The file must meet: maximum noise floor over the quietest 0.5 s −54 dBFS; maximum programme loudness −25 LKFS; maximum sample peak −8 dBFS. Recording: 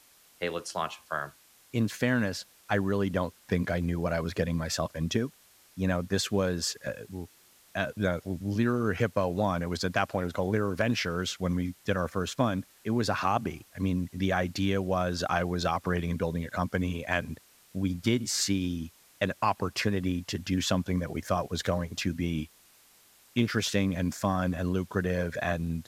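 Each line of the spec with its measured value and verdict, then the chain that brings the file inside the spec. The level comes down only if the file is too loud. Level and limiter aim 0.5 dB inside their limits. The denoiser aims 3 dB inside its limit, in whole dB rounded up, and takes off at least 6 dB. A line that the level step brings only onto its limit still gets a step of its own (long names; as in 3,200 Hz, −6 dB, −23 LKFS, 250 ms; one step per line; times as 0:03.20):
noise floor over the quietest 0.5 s −60 dBFS: in spec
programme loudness −30.0 LKFS: in spec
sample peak −11.5 dBFS: in spec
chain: no processing needed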